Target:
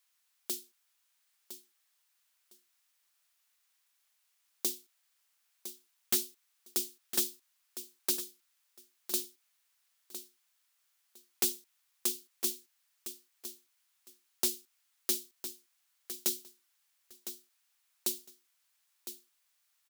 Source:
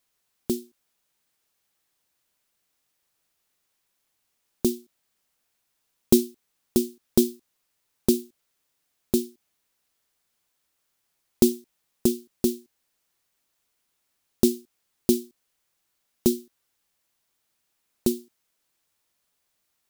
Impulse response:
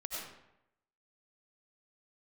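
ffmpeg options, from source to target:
-af "highpass=1.1k,aeval=exprs='0.106*(abs(mod(val(0)/0.106+3,4)-2)-1)':c=same,aecho=1:1:1008|2016:0.282|0.0507"

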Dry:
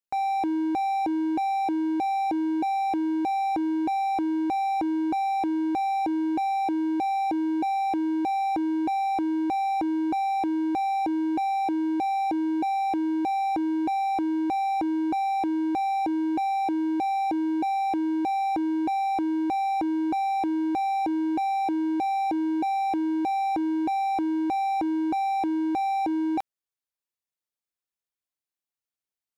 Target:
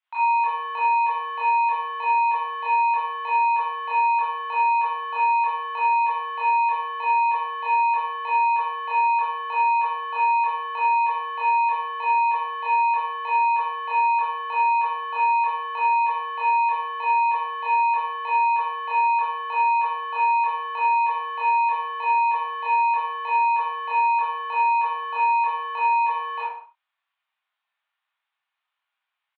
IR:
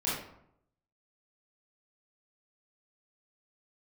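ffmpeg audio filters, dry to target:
-filter_complex "[0:a]asplit=2[a][b];[b]highpass=f=720:p=1,volume=24dB,asoftclip=type=tanh:threshold=-20.5dB[c];[a][c]amix=inputs=2:normalize=0,lowpass=f=2.3k:p=1,volume=-6dB,aecho=1:1:65|94:0.251|0.1[d];[1:a]atrim=start_sample=2205,afade=t=out:st=0.3:d=0.01,atrim=end_sample=13671[e];[d][e]afir=irnorm=-1:irlink=0,highpass=f=600:t=q:w=0.5412,highpass=f=600:t=q:w=1.307,lowpass=f=3.4k:t=q:w=0.5176,lowpass=f=3.4k:t=q:w=0.7071,lowpass=f=3.4k:t=q:w=1.932,afreqshift=150,volume=-4.5dB"

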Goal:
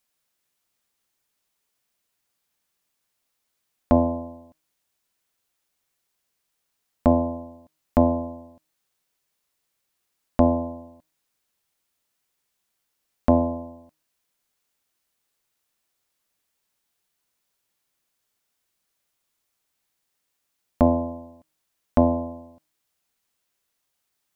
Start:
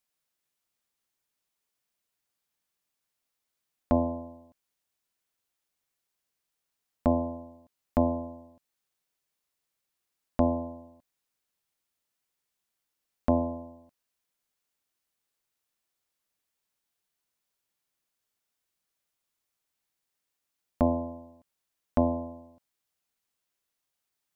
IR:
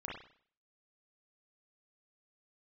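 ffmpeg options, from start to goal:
-af "bandreject=f=156.1:t=h:w=4,bandreject=f=312.2:t=h:w=4,bandreject=f=468.3:t=h:w=4,bandreject=f=624.4:t=h:w=4,bandreject=f=780.5:t=h:w=4,bandreject=f=936.6:t=h:w=4,bandreject=f=1.0927k:t=h:w=4,bandreject=f=1.2488k:t=h:w=4,bandreject=f=1.4049k:t=h:w=4,bandreject=f=1.561k:t=h:w=4,bandreject=f=1.7171k:t=h:w=4,bandreject=f=1.8732k:t=h:w=4,bandreject=f=2.0293k:t=h:w=4,bandreject=f=2.1854k:t=h:w=4,bandreject=f=2.3415k:t=h:w=4,bandreject=f=2.4976k:t=h:w=4,bandreject=f=2.6537k:t=h:w=4,bandreject=f=2.8098k:t=h:w=4,bandreject=f=2.9659k:t=h:w=4,bandreject=f=3.122k:t=h:w=4,bandreject=f=3.2781k:t=h:w=4,bandreject=f=3.4342k:t=h:w=4,bandreject=f=3.5903k:t=h:w=4,bandreject=f=3.7464k:t=h:w=4,bandreject=f=3.9025k:t=h:w=4,bandreject=f=4.0586k:t=h:w=4,bandreject=f=4.2147k:t=h:w=4,bandreject=f=4.3708k:t=h:w=4,bandreject=f=4.5269k:t=h:w=4,bandreject=f=4.683k:t=h:w=4,bandreject=f=4.8391k:t=h:w=4,bandreject=f=4.9952k:t=h:w=4,bandreject=f=5.1513k:t=h:w=4,bandreject=f=5.3074k:t=h:w=4,bandreject=f=5.4635k:t=h:w=4,bandreject=f=5.6196k:t=h:w=4,bandreject=f=5.7757k:t=h:w=4,bandreject=f=5.9318k:t=h:w=4,volume=6.5dB"

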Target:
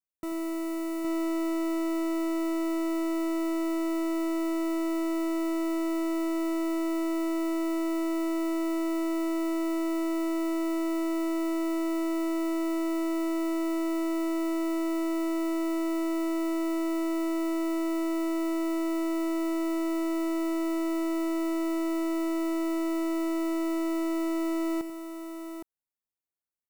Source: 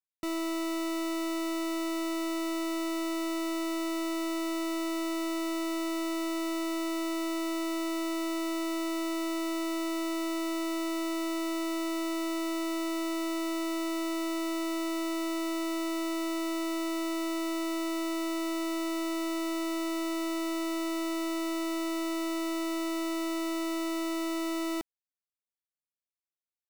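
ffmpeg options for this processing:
-af "equalizer=f=3.8k:w=0.67:g=-11,aecho=1:1:88|814:0.211|0.501"

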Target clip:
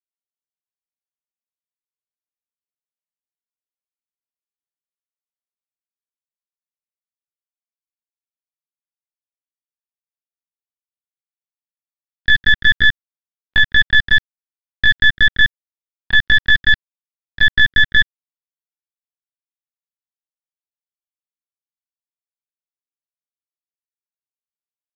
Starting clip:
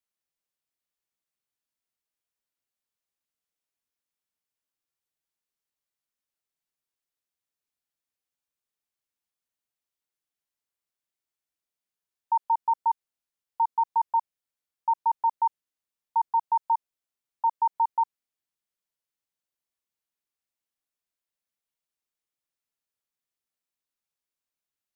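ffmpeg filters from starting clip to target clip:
-af "agate=range=-10dB:threshold=-34dB:ratio=16:detection=peak,adynamicequalizer=threshold=0.00794:dfrequency=560:dqfactor=2:tfrequency=560:tqfactor=2:attack=5:release=100:ratio=0.375:range=1.5:mode=boostabove:tftype=bell,acrusher=bits=3:dc=4:mix=0:aa=0.000001,asetrate=83250,aresample=44100,atempo=0.529732,aresample=11025,aresample=44100,acontrast=82,volume=8.5dB"

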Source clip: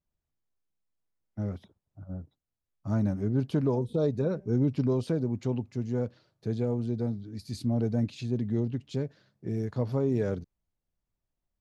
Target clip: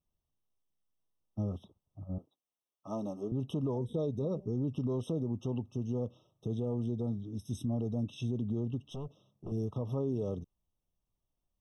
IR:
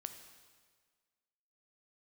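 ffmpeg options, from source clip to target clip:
-filter_complex "[0:a]asettb=1/sr,asplit=3[a][b][c];[a]atrim=end=2.184[d];[b]atrim=start=2.18:end=3.32,asetpts=PTS-STARTPTS,afade=t=in:d=0.004:c=qsin,afade=t=out:st=1.136:d=0.004:c=qsin,highpass=380[e];[c]atrim=start=3.316[f];[d][e]acrossfade=d=0.004:c1=hsin:c2=qsin[g];[g][f]acrossfade=d=0.004:c1=qsin:c2=hsin,alimiter=level_in=1dB:limit=-24dB:level=0:latency=1:release=121,volume=-1dB,asettb=1/sr,asplit=3[h][i][j];[h]atrim=end=8.894[k];[i]atrim=start=8.89:end=9.52,asetpts=PTS-STARTPTS,afade=t=in:d=0.004:c=qsin,afade=t=out:st=0.626:d=0.004:c=qsin,aeval=exprs='(tanh(63.1*val(0)+0.4)-tanh(0.4))/63.1':c=same[l];[j]atrim=start=9.516[m];[k][l]acrossfade=d=0.004:c1=hsin:c2=qsin[n];[n][m]acrossfade=d=0.004:c1=qsin:c2=hsin,afftfilt=real='re*eq(mod(floor(b*sr/1024/1300),2),0)':imag='im*eq(mod(floor(b*sr/1024/1300),2),0)':win_size=1024:overlap=0.75"

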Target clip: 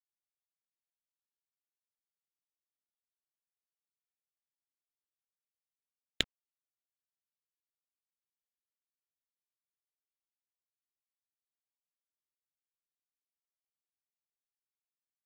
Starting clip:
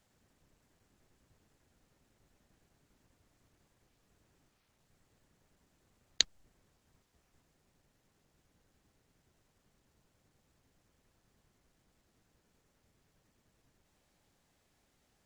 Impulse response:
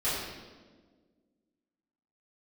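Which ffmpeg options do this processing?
-af "aresample=8000,aresample=44100,aeval=exprs='0.266*(cos(1*acos(clip(val(0)/0.266,-1,1)))-cos(1*PI/2))+0.075*(cos(2*acos(clip(val(0)/0.266,-1,1)))-cos(2*PI/2))+0.0188*(cos(3*acos(clip(val(0)/0.266,-1,1)))-cos(3*PI/2))':c=same,acrusher=bits=7:mix=0:aa=0.5,volume=3.5dB"

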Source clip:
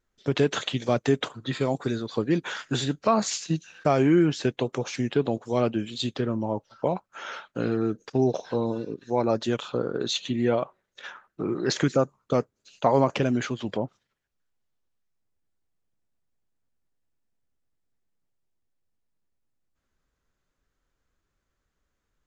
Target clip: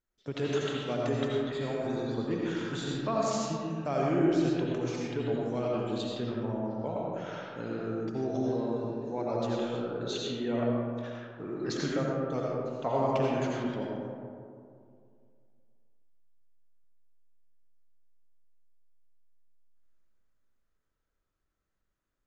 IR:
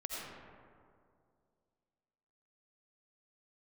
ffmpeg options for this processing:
-filter_complex "[1:a]atrim=start_sample=2205[a];[0:a][a]afir=irnorm=-1:irlink=0,volume=-7.5dB"

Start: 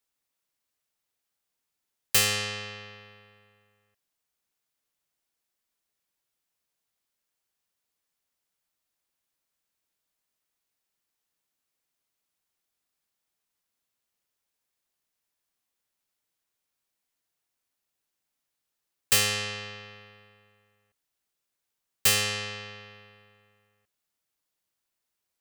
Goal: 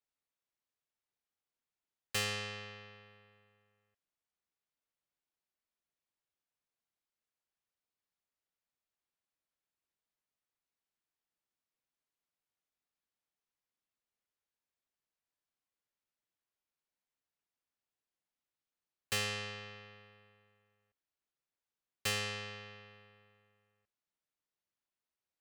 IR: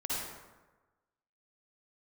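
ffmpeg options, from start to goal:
-af "aemphasis=mode=reproduction:type=50kf,volume=-7.5dB"

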